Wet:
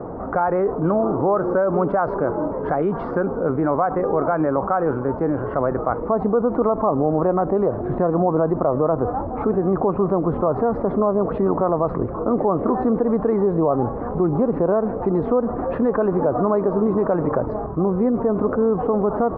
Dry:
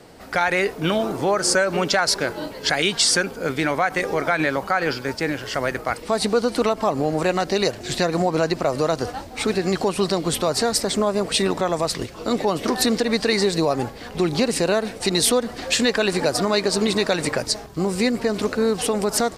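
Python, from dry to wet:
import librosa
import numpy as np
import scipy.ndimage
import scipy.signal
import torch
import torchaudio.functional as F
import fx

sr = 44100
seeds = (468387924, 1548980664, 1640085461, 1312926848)

y = scipy.signal.sosfilt(scipy.signal.cheby1(4, 1.0, 1200.0, 'lowpass', fs=sr, output='sos'), x)
y = fx.env_flatten(y, sr, amount_pct=50)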